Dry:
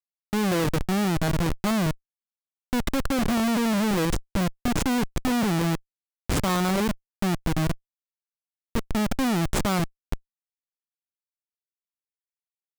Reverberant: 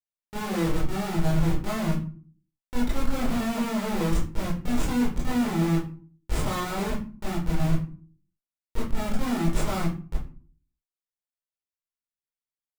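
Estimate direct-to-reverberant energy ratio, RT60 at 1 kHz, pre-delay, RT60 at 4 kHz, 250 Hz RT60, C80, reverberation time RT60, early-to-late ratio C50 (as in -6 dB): -7.0 dB, 0.40 s, 19 ms, 0.25 s, 0.60 s, 11.5 dB, 0.40 s, 4.5 dB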